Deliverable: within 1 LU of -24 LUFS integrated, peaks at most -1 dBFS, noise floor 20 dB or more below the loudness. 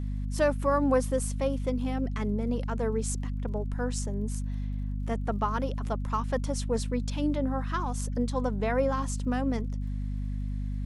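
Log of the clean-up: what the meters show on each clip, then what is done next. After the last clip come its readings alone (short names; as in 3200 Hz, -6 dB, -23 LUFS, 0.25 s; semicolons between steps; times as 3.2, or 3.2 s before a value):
ticks 49/s; hum 50 Hz; harmonics up to 250 Hz; hum level -29 dBFS; loudness -30.5 LUFS; peak -13.0 dBFS; loudness target -24.0 LUFS
-> de-click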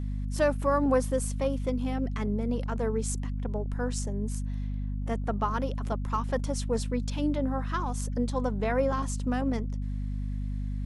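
ticks 0/s; hum 50 Hz; harmonics up to 250 Hz; hum level -29 dBFS
-> notches 50/100/150/200/250 Hz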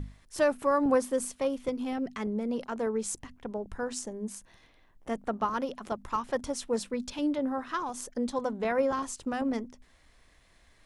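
hum none; loudness -31.5 LUFS; peak -13.0 dBFS; loudness target -24.0 LUFS
-> gain +7.5 dB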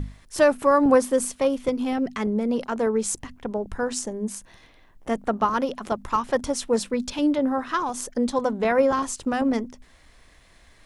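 loudness -24.0 LUFS; peak -5.5 dBFS; noise floor -55 dBFS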